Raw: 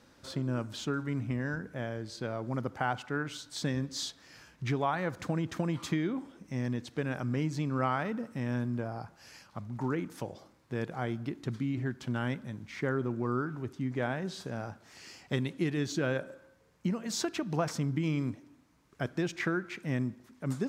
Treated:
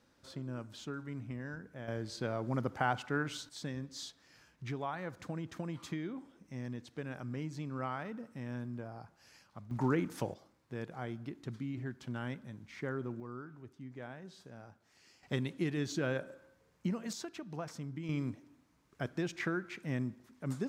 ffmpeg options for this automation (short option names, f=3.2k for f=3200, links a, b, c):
-af "asetnsamples=n=441:p=0,asendcmd='1.88 volume volume -0.5dB;3.49 volume volume -8.5dB;9.71 volume volume 1.5dB;10.34 volume volume -7dB;13.2 volume volume -14dB;15.23 volume volume -3.5dB;17.13 volume volume -11dB;18.09 volume volume -4dB',volume=-9dB"